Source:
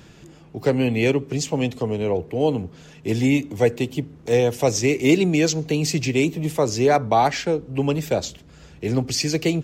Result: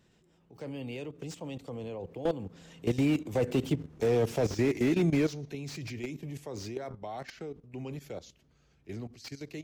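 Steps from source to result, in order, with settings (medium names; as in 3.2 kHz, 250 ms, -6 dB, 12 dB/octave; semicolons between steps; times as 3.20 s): Doppler pass-by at 3.86 s, 25 m/s, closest 14 m; level held to a coarse grid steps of 14 dB; slew-rate limiter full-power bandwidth 26 Hz; trim +3.5 dB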